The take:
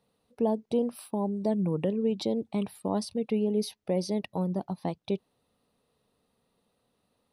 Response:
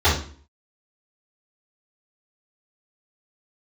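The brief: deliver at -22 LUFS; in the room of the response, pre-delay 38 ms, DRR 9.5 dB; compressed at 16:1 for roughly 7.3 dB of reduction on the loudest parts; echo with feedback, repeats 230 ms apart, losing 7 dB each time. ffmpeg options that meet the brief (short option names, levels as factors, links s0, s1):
-filter_complex "[0:a]acompressor=threshold=0.0355:ratio=16,aecho=1:1:230|460|690|920|1150:0.447|0.201|0.0905|0.0407|0.0183,asplit=2[s0][s1];[1:a]atrim=start_sample=2205,adelay=38[s2];[s1][s2]afir=irnorm=-1:irlink=0,volume=0.0316[s3];[s0][s3]amix=inputs=2:normalize=0,volume=3.98"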